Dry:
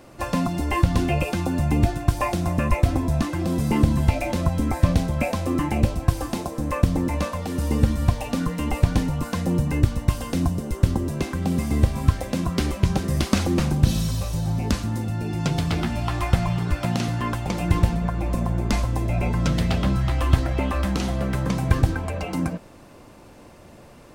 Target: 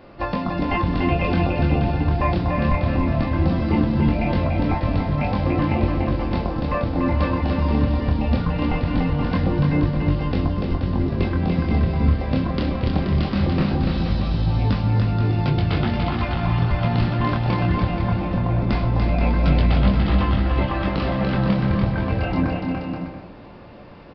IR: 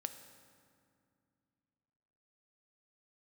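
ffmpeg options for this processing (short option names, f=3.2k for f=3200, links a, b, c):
-filter_complex "[0:a]alimiter=limit=-13dB:level=0:latency=1:release=223,flanger=delay=20:depth=6.9:speed=0.2,aecho=1:1:290|478.5|601|680.7|732.4:0.631|0.398|0.251|0.158|0.1,asplit=2[a][b];[1:a]atrim=start_sample=2205,lowpass=4.7k[c];[b][c]afir=irnorm=-1:irlink=0,volume=1dB[d];[a][d]amix=inputs=2:normalize=0,aresample=11025,aresample=44100"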